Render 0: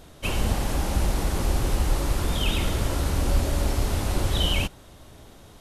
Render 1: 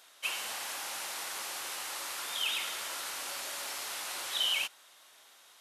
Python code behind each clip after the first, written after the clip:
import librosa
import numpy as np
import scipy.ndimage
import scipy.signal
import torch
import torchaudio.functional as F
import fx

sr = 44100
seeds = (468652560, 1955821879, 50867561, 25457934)

y = scipy.signal.sosfilt(scipy.signal.butter(2, 1300.0, 'highpass', fs=sr, output='sos'), x)
y = y * 10.0 ** (-2.0 / 20.0)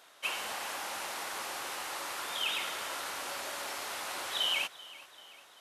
y = fx.high_shelf(x, sr, hz=2200.0, db=-9.5)
y = fx.echo_feedback(y, sr, ms=388, feedback_pct=54, wet_db=-19.0)
y = y * 10.0 ** (5.5 / 20.0)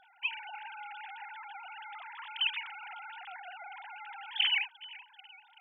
y = fx.sine_speech(x, sr)
y = fx.dynamic_eq(y, sr, hz=1100.0, q=1.1, threshold_db=-50.0, ratio=4.0, max_db=-5)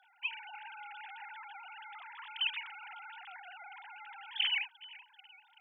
y = scipy.signal.sosfilt(scipy.signal.butter(4, 760.0, 'highpass', fs=sr, output='sos'), x)
y = fx.rider(y, sr, range_db=4, speed_s=2.0)
y = y * 10.0 ** (-5.0 / 20.0)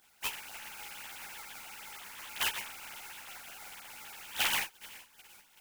y = fx.spec_flatten(x, sr, power=0.19)
y = fx.ensemble(y, sr)
y = y * 10.0 ** (5.5 / 20.0)